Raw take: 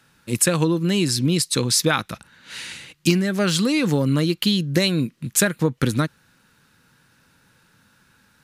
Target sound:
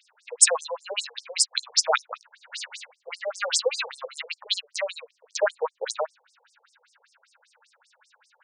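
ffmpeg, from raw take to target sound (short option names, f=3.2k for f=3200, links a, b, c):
-af "afftfilt=real='re*between(b*sr/1024,600*pow(7000/600,0.5+0.5*sin(2*PI*5.1*pts/sr))/1.41,600*pow(7000/600,0.5+0.5*sin(2*PI*5.1*pts/sr))*1.41)':imag='im*between(b*sr/1024,600*pow(7000/600,0.5+0.5*sin(2*PI*5.1*pts/sr))/1.41,600*pow(7000/600,0.5+0.5*sin(2*PI*5.1*pts/sr))*1.41)':win_size=1024:overlap=0.75,volume=5dB"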